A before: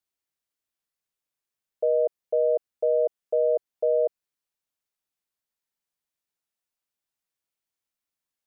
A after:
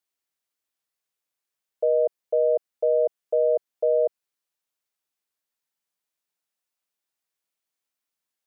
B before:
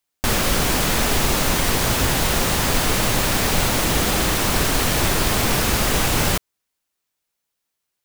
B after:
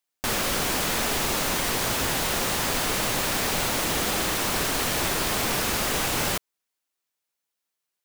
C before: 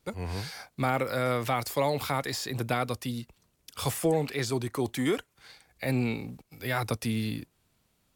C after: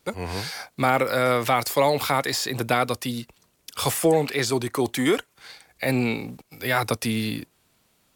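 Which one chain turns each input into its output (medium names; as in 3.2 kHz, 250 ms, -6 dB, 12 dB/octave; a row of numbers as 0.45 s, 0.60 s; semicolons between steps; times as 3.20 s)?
bass shelf 160 Hz -10 dB; normalise loudness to -24 LUFS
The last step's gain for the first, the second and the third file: +2.5 dB, -4.5 dB, +8.0 dB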